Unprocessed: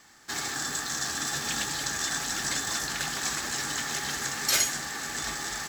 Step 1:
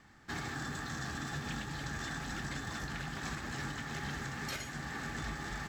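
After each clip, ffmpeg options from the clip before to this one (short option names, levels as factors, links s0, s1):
-af "bass=f=250:g=12,treble=f=4000:g=-14,alimiter=level_in=1.12:limit=0.0631:level=0:latency=1:release=404,volume=0.891,volume=0.631"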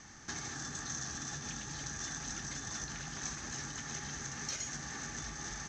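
-af "acompressor=threshold=0.00447:ratio=6,lowpass=f=6200:t=q:w=12,volume=1.68"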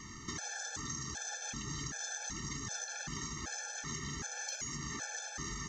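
-af "acompressor=threshold=0.00794:ratio=6,afftfilt=real='re*gt(sin(2*PI*1.3*pts/sr)*(1-2*mod(floor(b*sr/1024/450),2)),0)':imag='im*gt(sin(2*PI*1.3*pts/sr)*(1-2*mod(floor(b*sr/1024/450),2)),0)':win_size=1024:overlap=0.75,volume=2.37"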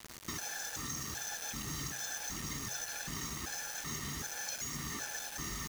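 -af "bandreject=f=131.1:t=h:w=4,bandreject=f=262.2:t=h:w=4,bandreject=f=393.3:t=h:w=4,bandreject=f=524.4:t=h:w=4,bandreject=f=655.5:t=h:w=4,bandreject=f=786.6:t=h:w=4,bandreject=f=917.7:t=h:w=4,acrusher=bits=6:mix=0:aa=0.000001"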